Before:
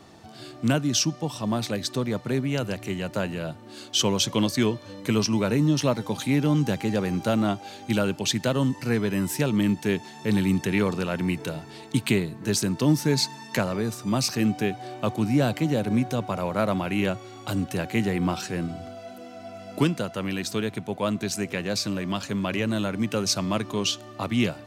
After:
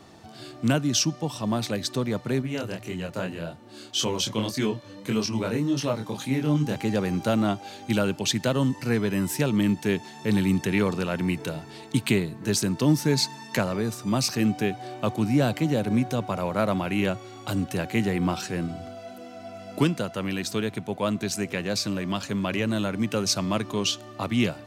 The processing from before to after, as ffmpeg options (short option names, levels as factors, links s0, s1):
-filter_complex "[0:a]asettb=1/sr,asplit=3[s0][s1][s2];[s0]atrim=end=2.424[s3];[s1]atrim=start=2.42:end=6.76,asetpts=PTS-STARTPTS,afade=t=in:d=0.004:c=qsin,afade=t=out:st=4.336:d=0.004:c=qsin,flanger=delay=22.5:depth=5:speed=1.8[s4];[s2]atrim=start=6.756[s5];[s3][s4]acrossfade=d=0.004:c1=hsin:c2=qsin[s6];[s6][s5]acrossfade=d=0.004:c1=qsin:c2=hsin"